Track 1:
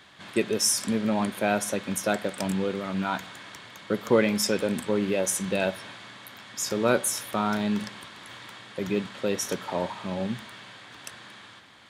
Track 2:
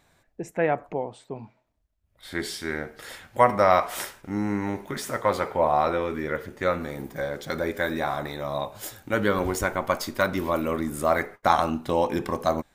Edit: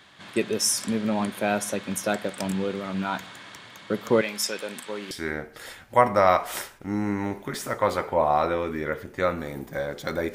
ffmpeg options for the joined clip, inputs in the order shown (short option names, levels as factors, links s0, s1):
-filter_complex "[0:a]asettb=1/sr,asplit=3[s0][s1][s2];[s0]atrim=end=4.214[s3];[s1]atrim=start=4.21:end=5.11,asetpts=PTS-STARTPTS,afade=t=in:d=0.004:c=qsin,afade=t=out:st=0.896:d=0.004:c=qsin,highpass=f=980:p=1[s4];[s2]atrim=start=5.106[s5];[s3][s4]acrossfade=d=0.004:c1=hsin:c2=qsin[s6];[s6][s5]acrossfade=d=0.004:c1=qsin:c2=hsin,apad=whole_dur=10.34,atrim=end=10.34,atrim=end=5.112[s7];[1:a]atrim=start=2.538:end=7.77[s8];[s7][s8]acrossfade=d=0.004:c1=hsin:c2=hsin"